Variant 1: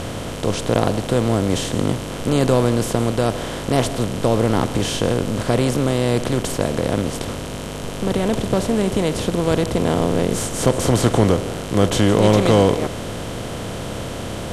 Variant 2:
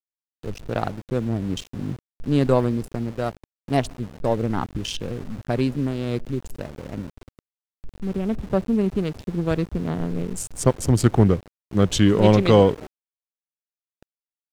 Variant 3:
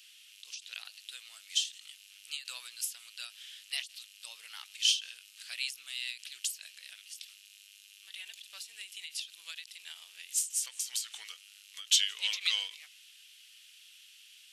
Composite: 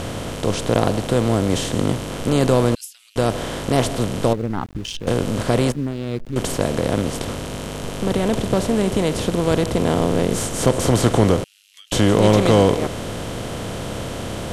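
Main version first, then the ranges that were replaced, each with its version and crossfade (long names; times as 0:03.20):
1
0:02.75–0:03.16: punch in from 3
0:04.33–0:05.07: punch in from 2
0:05.72–0:06.36: punch in from 2
0:11.44–0:11.92: punch in from 3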